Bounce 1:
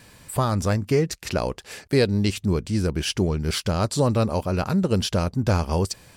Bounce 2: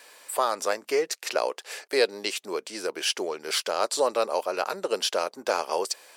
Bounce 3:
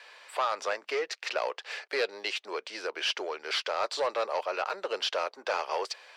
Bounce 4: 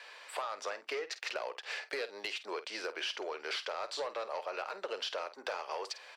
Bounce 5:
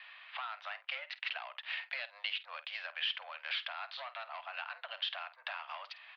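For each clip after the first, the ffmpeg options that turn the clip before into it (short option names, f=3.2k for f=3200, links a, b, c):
-af "highpass=f=440:w=0.5412,highpass=f=440:w=1.3066,volume=1dB"
-filter_complex "[0:a]equalizer=f=2.3k:w=0.4:g=5,asoftclip=type=tanh:threshold=-18dB,acrossover=split=380 5200:gain=0.141 1 0.0794[a][b][c];[a][b][c]amix=inputs=3:normalize=0,volume=-2.5dB"
-filter_complex "[0:a]acompressor=threshold=-35dB:ratio=6,asoftclip=type=hard:threshold=-27dB,asplit=2[a][b];[b]adelay=50,volume=-13.5dB[c];[a][c]amix=inputs=2:normalize=0"
-af "adynamicsmooth=sensitivity=5:basefreq=2.8k,aderivative,highpass=f=520:t=q:w=0.5412,highpass=f=520:t=q:w=1.307,lowpass=f=3.5k:t=q:w=0.5176,lowpass=f=3.5k:t=q:w=0.7071,lowpass=f=3.5k:t=q:w=1.932,afreqshift=110,volume=13.5dB"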